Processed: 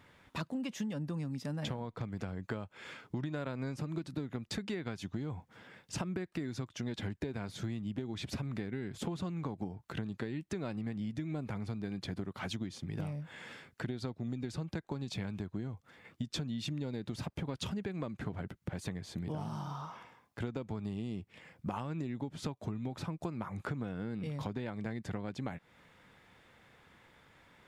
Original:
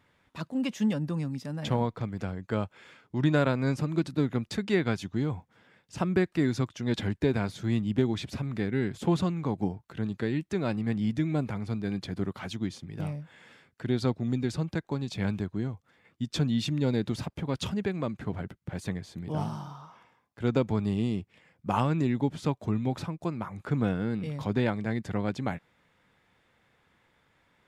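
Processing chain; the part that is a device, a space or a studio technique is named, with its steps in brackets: serial compression, leveller first (compressor 2.5:1, threshold -28 dBFS, peak gain reduction 6.5 dB; compressor 6:1, threshold -41 dBFS, peak gain reduction 15.5 dB); gain +5.5 dB

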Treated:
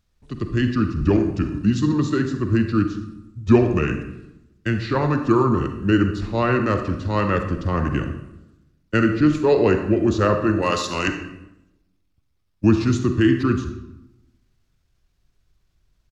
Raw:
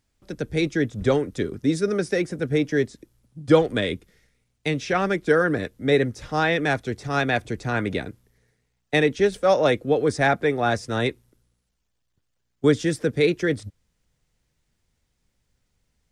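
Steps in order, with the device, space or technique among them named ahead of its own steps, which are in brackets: 10.62–11.07 tilt +4 dB/oct; monster voice (pitch shift -5 st; low shelf 140 Hz +8 dB; reverb RT60 0.90 s, pre-delay 38 ms, DRR 6 dB)

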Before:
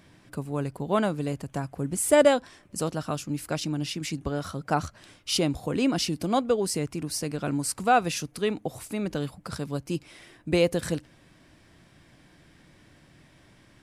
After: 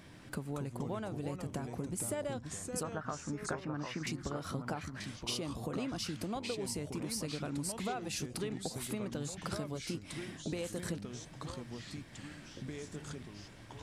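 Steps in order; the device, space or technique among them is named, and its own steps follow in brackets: 2.83–4.07 EQ curve 330 Hz 0 dB, 1700 Hz +12 dB, 3100 Hz -9 dB, 7100 Hz -20 dB; serial compression, leveller first (compressor 2:1, threshold -30 dBFS, peak gain reduction 9.5 dB; compressor, threshold -37 dBFS, peak gain reduction 14 dB); echoes that change speed 0.166 s, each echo -3 st, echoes 3, each echo -6 dB; gain +1 dB

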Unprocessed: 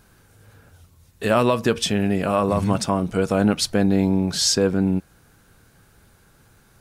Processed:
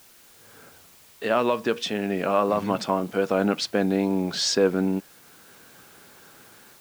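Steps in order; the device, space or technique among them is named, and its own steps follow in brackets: dictaphone (BPF 260–4300 Hz; AGC gain up to 14 dB; wow and flutter; white noise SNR 27 dB); gain -7.5 dB

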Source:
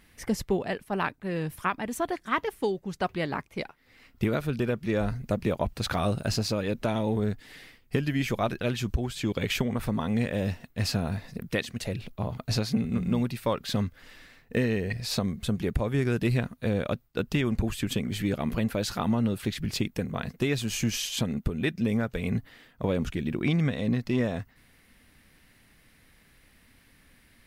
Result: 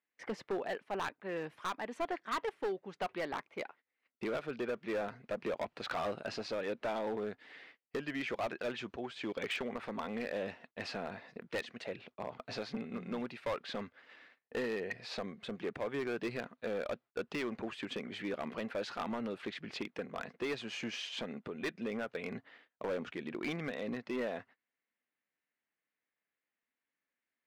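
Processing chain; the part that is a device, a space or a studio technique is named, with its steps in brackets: walkie-talkie (BPF 400–2700 Hz; hard clip -28 dBFS, distortion -10 dB; gate -54 dBFS, range -25 dB); gain -3 dB

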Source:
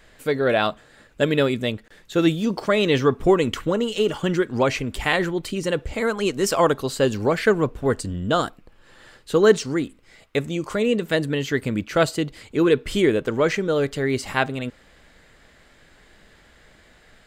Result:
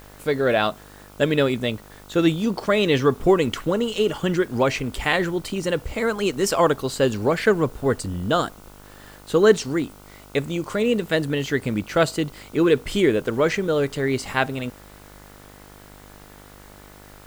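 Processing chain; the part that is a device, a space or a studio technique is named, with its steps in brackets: video cassette with head-switching buzz (buzz 50 Hz, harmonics 30, -47 dBFS -3 dB/oct; white noise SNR 30 dB)

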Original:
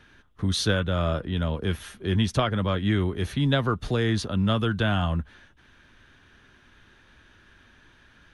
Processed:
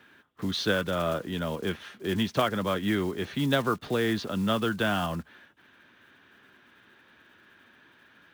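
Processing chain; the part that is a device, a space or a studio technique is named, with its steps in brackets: early digital voice recorder (BPF 200–3900 Hz; block floating point 5-bit)

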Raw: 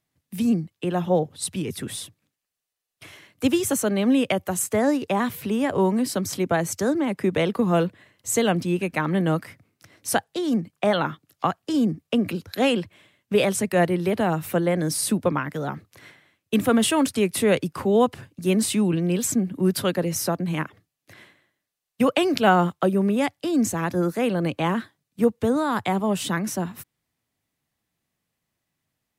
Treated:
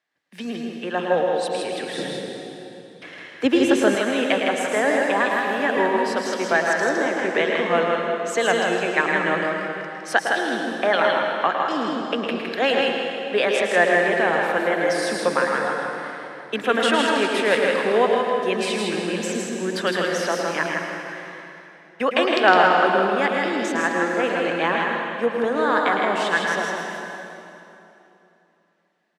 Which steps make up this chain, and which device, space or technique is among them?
station announcement (BPF 460–4500 Hz; bell 1700 Hz +9.5 dB 0.32 oct; loudspeakers at several distances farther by 37 m -8 dB, 55 m -4 dB; reverb RT60 3.1 s, pre-delay 0.108 s, DRR 2.5 dB); 1.98–3.95 low shelf 450 Hz +11.5 dB; gain +2 dB

